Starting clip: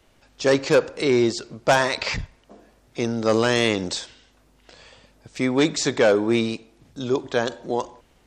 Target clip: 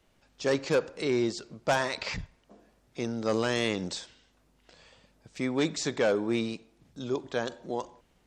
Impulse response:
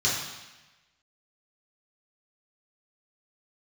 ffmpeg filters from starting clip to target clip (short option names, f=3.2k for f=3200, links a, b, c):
-af "equalizer=f=180:t=o:w=0.36:g=5,volume=-8.5dB"